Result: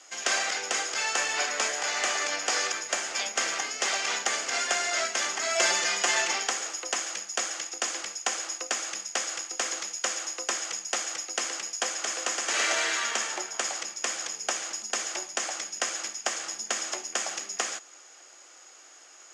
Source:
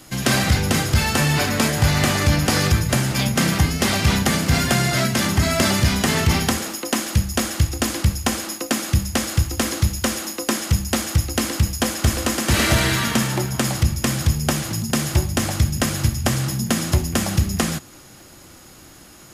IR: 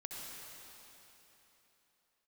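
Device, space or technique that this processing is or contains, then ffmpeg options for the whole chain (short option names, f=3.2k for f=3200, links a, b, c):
phone speaker on a table: -filter_complex "[0:a]asettb=1/sr,asplit=3[a][b][c];[a]atrim=end=5.554[d];[b]atrim=start=5.55:end=6.31,asetpts=PTS-STARTPTS,afade=t=in:d=0.004:c=qsin,afade=t=out:st=0.756:d=0.004:c=qsin,aecho=1:1:5.7:0.94,atrim=end_sample=33516[e];[c]atrim=start=6.306[f];[d][e]acrossfade=d=0.004:c1=hsin:c2=qsin[g];[g][f]acrossfade=d=0.004:c1=qsin:c2=hsin,highpass=f=490:w=0.5412,highpass=f=490:w=1.3066,equalizer=f=560:t=q:w=4:g=-4,equalizer=f=960:t=q:w=4:g=-4,equalizer=f=4k:t=q:w=4:g=-5,equalizer=f=6.7k:t=q:w=4:g=7,lowpass=f=7.3k:w=0.5412,lowpass=f=7.3k:w=1.3066,volume=-5dB"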